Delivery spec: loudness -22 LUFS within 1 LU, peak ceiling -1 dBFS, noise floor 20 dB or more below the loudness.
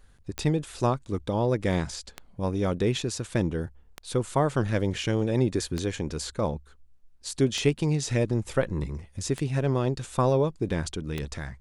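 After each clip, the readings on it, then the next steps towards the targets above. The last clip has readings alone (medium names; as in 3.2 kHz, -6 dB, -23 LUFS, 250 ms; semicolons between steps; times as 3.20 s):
clicks found 7; loudness -28.0 LUFS; peak level -9.5 dBFS; loudness target -22.0 LUFS
-> de-click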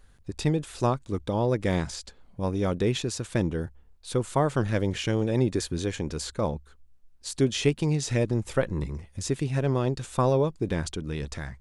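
clicks found 0; loudness -28.0 LUFS; peak level -9.5 dBFS; loudness target -22.0 LUFS
-> trim +6 dB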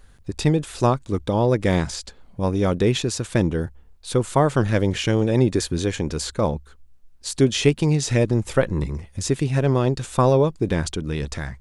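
loudness -22.0 LUFS; peak level -3.5 dBFS; noise floor -49 dBFS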